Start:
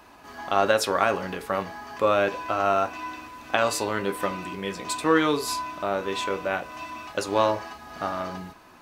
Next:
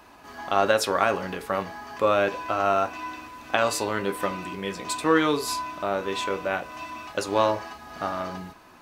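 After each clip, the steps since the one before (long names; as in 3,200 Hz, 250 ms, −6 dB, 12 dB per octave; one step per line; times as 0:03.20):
no processing that can be heard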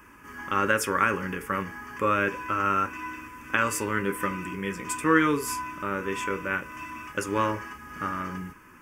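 phaser with its sweep stopped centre 1,700 Hz, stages 4
level +3 dB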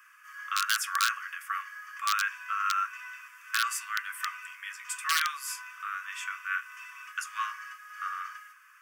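wrap-around overflow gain 12.5 dB
Chebyshev high-pass with heavy ripple 1,100 Hz, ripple 3 dB
level −1 dB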